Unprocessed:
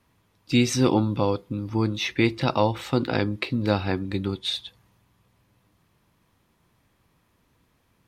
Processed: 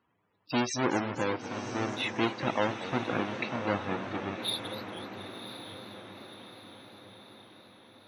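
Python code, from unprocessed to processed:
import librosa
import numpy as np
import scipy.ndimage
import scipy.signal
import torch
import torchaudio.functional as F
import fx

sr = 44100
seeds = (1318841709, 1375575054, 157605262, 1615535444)

p1 = fx.halfwave_hold(x, sr)
p2 = fx.highpass(p1, sr, hz=470.0, slope=6)
p3 = fx.spec_topn(p2, sr, count=64)
p4 = p3 + fx.echo_diffused(p3, sr, ms=1060, feedback_pct=53, wet_db=-10, dry=0)
p5 = fx.echo_warbled(p4, sr, ms=241, feedback_pct=75, rate_hz=2.8, cents=199, wet_db=-13.5)
y = F.gain(torch.from_numpy(p5), -7.0).numpy()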